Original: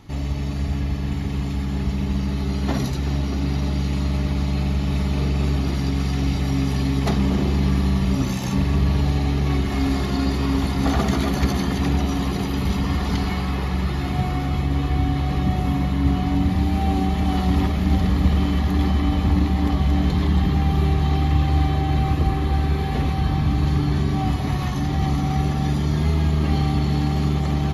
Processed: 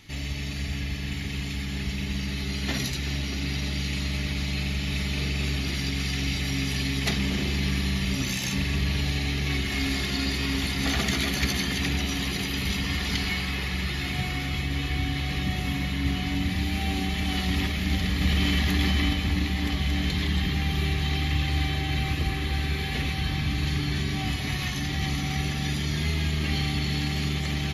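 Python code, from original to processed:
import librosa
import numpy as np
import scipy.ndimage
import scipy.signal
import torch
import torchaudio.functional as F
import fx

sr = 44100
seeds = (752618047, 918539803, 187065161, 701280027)

y = fx.env_flatten(x, sr, amount_pct=50, at=(18.21, 19.13))
y = fx.high_shelf_res(y, sr, hz=1500.0, db=11.0, q=1.5)
y = F.gain(torch.from_numpy(y), -7.5).numpy()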